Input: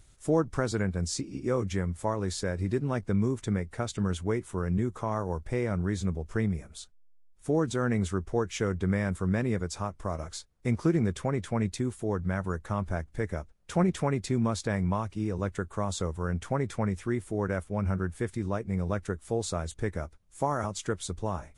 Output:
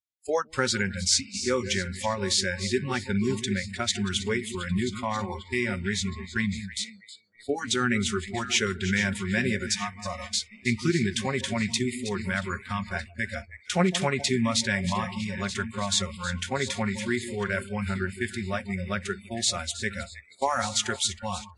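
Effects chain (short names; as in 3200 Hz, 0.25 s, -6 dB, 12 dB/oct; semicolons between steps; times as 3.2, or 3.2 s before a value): regenerating reverse delay 0.627 s, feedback 54%, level -12.5 dB; weighting filter D; gate -38 dBFS, range -19 dB; echo with dull and thin repeats by turns 0.159 s, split 1200 Hz, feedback 66%, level -10 dB; spectral noise reduction 29 dB; gain +4 dB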